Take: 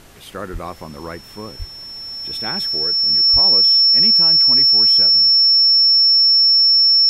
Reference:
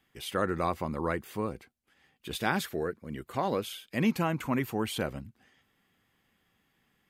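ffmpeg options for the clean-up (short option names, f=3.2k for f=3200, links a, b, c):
-filter_complex "[0:a]bandreject=f=5.4k:w=30,asplit=3[a][b][c];[a]afade=t=out:st=0.52:d=0.02[d];[b]highpass=f=140:w=0.5412,highpass=f=140:w=1.3066,afade=t=in:st=0.52:d=0.02,afade=t=out:st=0.64:d=0.02[e];[c]afade=t=in:st=0.64:d=0.02[f];[d][e][f]amix=inputs=3:normalize=0,asplit=3[g][h][i];[g]afade=t=out:st=1.58:d=0.02[j];[h]highpass=f=140:w=0.5412,highpass=f=140:w=1.3066,afade=t=in:st=1.58:d=0.02,afade=t=out:st=1.7:d=0.02[k];[i]afade=t=in:st=1.7:d=0.02[l];[j][k][l]amix=inputs=3:normalize=0,asplit=3[m][n][o];[m]afade=t=out:st=3.32:d=0.02[p];[n]highpass=f=140:w=0.5412,highpass=f=140:w=1.3066,afade=t=in:st=3.32:d=0.02,afade=t=out:st=3.44:d=0.02[q];[o]afade=t=in:st=3.44:d=0.02[r];[p][q][r]amix=inputs=3:normalize=0,agate=range=-21dB:threshold=-28dB,asetnsamples=n=441:p=0,asendcmd='3.65 volume volume 3dB',volume=0dB"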